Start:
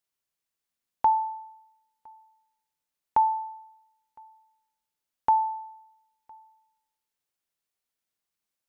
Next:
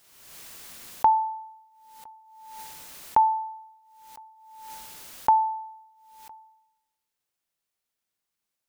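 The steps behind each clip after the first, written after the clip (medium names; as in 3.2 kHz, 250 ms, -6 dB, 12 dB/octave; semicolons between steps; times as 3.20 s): swell ahead of each attack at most 43 dB/s; trim +2 dB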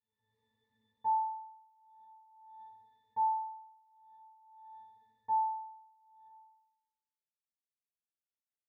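transient shaper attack +2 dB, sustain -3 dB; pitch-class resonator A, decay 0.37 s; trim -8.5 dB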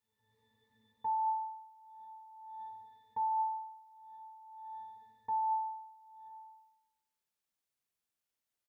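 in parallel at +2 dB: compressor with a negative ratio -37 dBFS, ratio -0.5; on the sum: delay 142 ms -16.5 dB; trim -4.5 dB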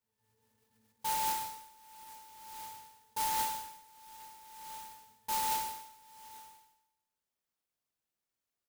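sampling jitter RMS 0.12 ms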